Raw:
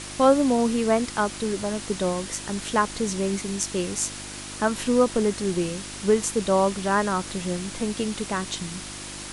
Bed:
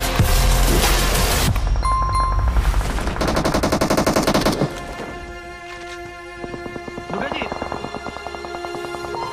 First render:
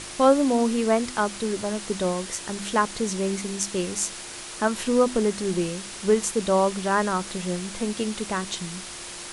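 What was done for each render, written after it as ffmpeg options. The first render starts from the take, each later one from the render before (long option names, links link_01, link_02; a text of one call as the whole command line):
ffmpeg -i in.wav -af "bandreject=frequency=50:width_type=h:width=4,bandreject=frequency=100:width_type=h:width=4,bandreject=frequency=150:width_type=h:width=4,bandreject=frequency=200:width_type=h:width=4,bandreject=frequency=250:width_type=h:width=4,bandreject=frequency=300:width_type=h:width=4" out.wav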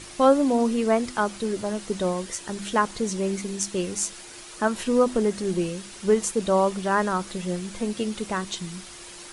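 ffmpeg -i in.wav -af "afftdn=noise_reduction=7:noise_floor=-38" out.wav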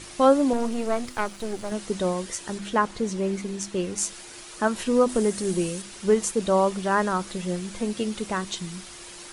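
ffmpeg -i in.wav -filter_complex "[0:a]asettb=1/sr,asplit=3[link_01][link_02][link_03];[link_01]atrim=end=0.534[link_04];[link_02]atrim=start=0.53:end=1.72,asetpts=PTS-STARTPTS,afade=type=in:duration=0.004:curve=qsin,afade=type=out:start_time=1.186:duration=0.004:curve=qsin,aeval=exprs='if(lt(val(0),0),0.251*val(0),val(0))':channel_layout=same[link_05];[link_03]atrim=start=1.716[link_06];[link_04][link_05]acrossfade=duration=0.004:curve1=hsin:curve2=qsin[link_07];[link_07][link_06]acrossfade=duration=0.004:curve1=qsin:curve2=hsin,asettb=1/sr,asplit=3[link_08][link_09][link_10];[link_08]atrim=end=2.584[link_11];[link_09]atrim=start=2.58:end=3.98,asetpts=PTS-STARTPTS,afade=type=in:duration=0.004:curve=qsin,afade=type=out:start_time=1.396:duration=0.004:curve=qsin,highshelf=frequency=4500:gain=-8[link_12];[link_10]atrim=start=3.976[link_13];[link_11][link_12]acrossfade=duration=0.004:curve1=hsin:curve2=qsin[link_14];[link_14][link_13]acrossfade=duration=0.004:curve1=qsin:curve2=hsin,asettb=1/sr,asplit=3[link_15][link_16][link_17];[link_15]atrim=end=5.094[link_18];[link_16]atrim=start=5.09:end=5.82,asetpts=PTS-STARTPTS,afade=type=in:duration=0.004:curve=qsin,afade=type=out:start_time=0.726:duration=0.004:curve=qsin,equalizer=frequency=9400:width_type=o:width=1.1:gain=8[link_19];[link_17]atrim=start=5.816[link_20];[link_18][link_19]acrossfade=duration=0.004:curve1=hsin:curve2=qsin[link_21];[link_21][link_20]acrossfade=duration=0.004:curve1=qsin:curve2=hsin" out.wav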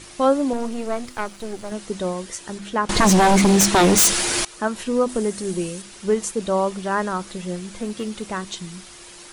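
ffmpeg -i in.wav -filter_complex "[0:a]asettb=1/sr,asplit=3[link_01][link_02][link_03];[link_01]atrim=end=2.894[link_04];[link_02]atrim=start=2.89:end=4.45,asetpts=PTS-STARTPTS,afade=type=in:duration=0.004:curve=qsin,afade=type=out:start_time=1.556:duration=0.004:curve=qsin,aeval=exprs='0.299*sin(PI/2*7.08*val(0)/0.299)':channel_layout=same[link_05];[link_03]atrim=start=4.446[link_06];[link_04][link_05]acrossfade=duration=0.004:curve1=hsin:curve2=qsin[link_07];[link_07][link_06]acrossfade=duration=0.004:curve1=qsin:curve2=hsin,asplit=3[link_08][link_09][link_10];[link_08]afade=type=out:start_time=7.75:duration=0.02[link_11];[link_09]asoftclip=type=hard:threshold=-21dB,afade=type=in:start_time=7.75:duration=0.02,afade=type=out:start_time=8.31:duration=0.02[link_12];[link_10]afade=type=in:start_time=8.31:duration=0.02[link_13];[link_11][link_12][link_13]amix=inputs=3:normalize=0" out.wav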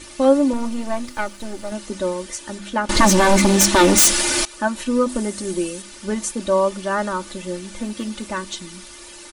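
ffmpeg -i in.wav -af "bandreject=frequency=730:width=12,aecho=1:1:3.4:0.79" out.wav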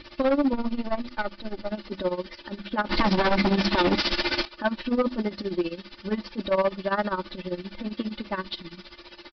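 ffmpeg -i in.wav -af "tremolo=f=15:d=0.83,aresample=11025,asoftclip=type=hard:threshold=-17.5dB,aresample=44100" out.wav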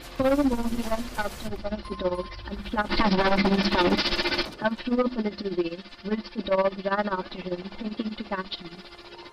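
ffmpeg -i in.wav -i bed.wav -filter_complex "[1:a]volume=-22.5dB[link_01];[0:a][link_01]amix=inputs=2:normalize=0" out.wav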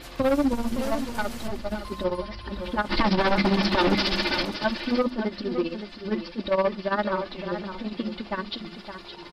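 ffmpeg -i in.wav -af "aecho=1:1:564:0.335" out.wav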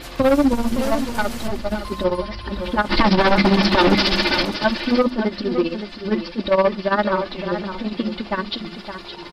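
ffmpeg -i in.wav -af "volume=6.5dB" out.wav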